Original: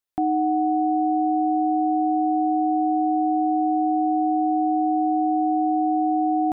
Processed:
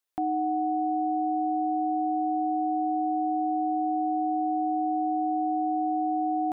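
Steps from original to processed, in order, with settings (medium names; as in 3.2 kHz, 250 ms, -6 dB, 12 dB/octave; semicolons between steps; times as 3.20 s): tone controls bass -8 dB, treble 0 dB; peak limiter -23 dBFS, peak gain reduction 6.5 dB; trim +2 dB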